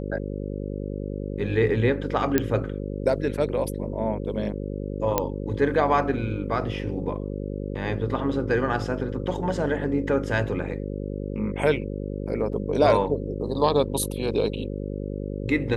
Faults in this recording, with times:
mains buzz 50 Hz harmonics 11 −31 dBFS
0:02.38: click −6 dBFS
0:05.18: click −6 dBFS
0:12.53: drop-out 2.1 ms

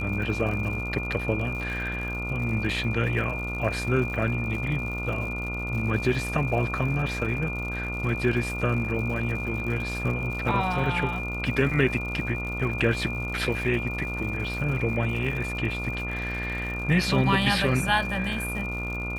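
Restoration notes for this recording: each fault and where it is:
mains buzz 60 Hz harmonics 24 −33 dBFS
surface crackle 130 per second −35 dBFS
whistle 2,400 Hz −32 dBFS

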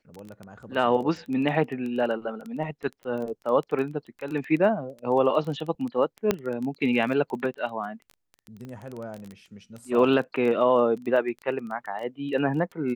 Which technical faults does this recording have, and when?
surface crackle 13 per second −31 dBFS
0:06.31: click −8 dBFS
0:08.65: click −29 dBFS

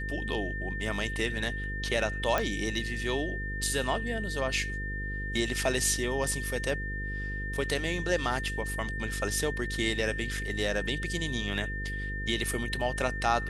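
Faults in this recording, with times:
mains buzz 50 Hz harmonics 10 −36 dBFS
whistle 1,800 Hz −36 dBFS
0:02.38: click −13 dBFS

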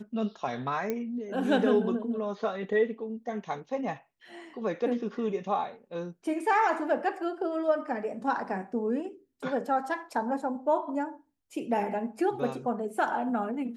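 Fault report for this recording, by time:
0:00.90: click −18 dBFS

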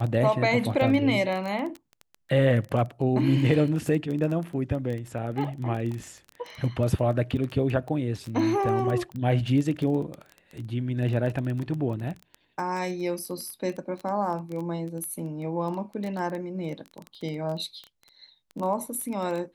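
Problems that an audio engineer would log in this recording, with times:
surface crackle 14 per second −30 dBFS

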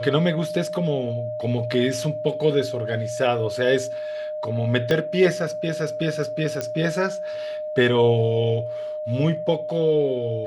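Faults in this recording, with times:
whistle 610 Hz −27 dBFS
0:04.91: click −10 dBFS
0:06.61: click −12 dBFS

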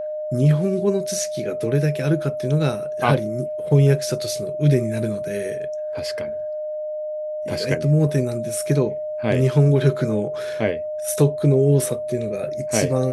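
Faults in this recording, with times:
whistle 610 Hz −25 dBFS

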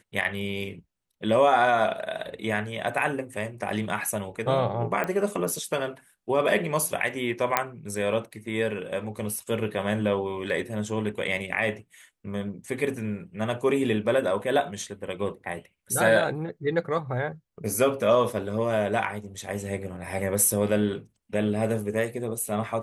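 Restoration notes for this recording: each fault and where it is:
0:05.04: click −15 dBFS
0:07.57: click −5 dBFS

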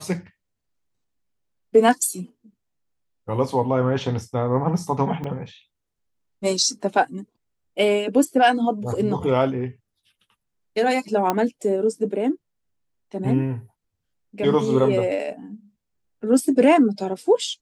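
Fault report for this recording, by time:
0:05.24: drop-out 2.7 ms
0:11.30: click −7 dBFS

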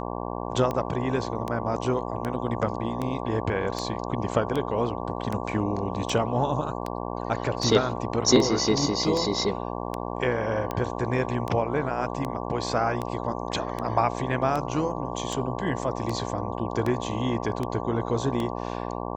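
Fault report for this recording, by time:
mains buzz 60 Hz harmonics 19 −32 dBFS
scratch tick 78 rpm −16 dBFS

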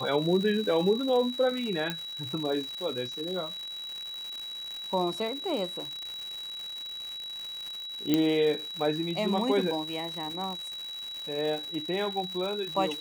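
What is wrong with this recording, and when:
surface crackle 250 per second −34 dBFS
whistle 3,900 Hz −36 dBFS
0:01.90: click −16 dBFS
0:08.14: click −11 dBFS

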